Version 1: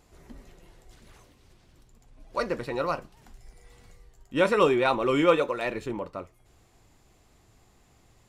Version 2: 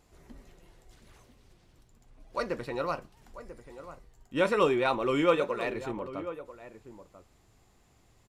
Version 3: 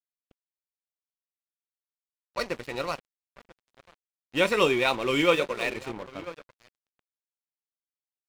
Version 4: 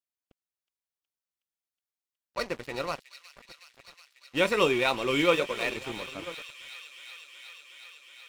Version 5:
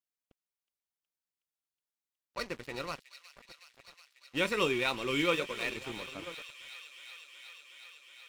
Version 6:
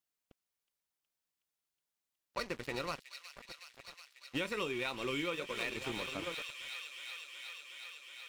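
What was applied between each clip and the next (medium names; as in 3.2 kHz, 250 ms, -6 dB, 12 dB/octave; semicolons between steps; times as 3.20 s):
echo from a far wall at 170 m, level -13 dB; trim -3.5 dB
level-controlled noise filter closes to 2.7 kHz, open at -26.5 dBFS; resonant high shelf 1.8 kHz +6 dB, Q 1.5; crossover distortion -40.5 dBFS; trim +3 dB
feedback echo behind a high-pass 368 ms, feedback 84%, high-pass 2.8 kHz, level -10 dB; trim -1.5 dB
dynamic bell 680 Hz, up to -6 dB, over -41 dBFS, Q 1.2; trim -3.5 dB
compression 8:1, threshold -37 dBFS, peak gain reduction 14 dB; trim +3.5 dB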